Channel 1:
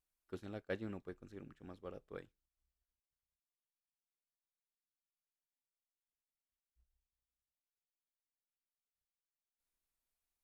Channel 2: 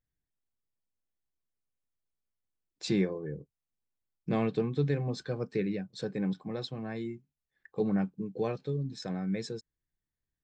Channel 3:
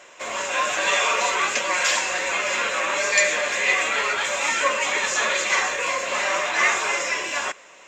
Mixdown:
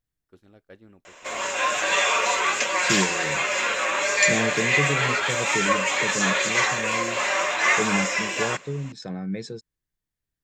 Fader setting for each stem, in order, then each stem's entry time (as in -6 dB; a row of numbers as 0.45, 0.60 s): -7.0, +2.5, -0.5 dB; 0.00, 0.00, 1.05 s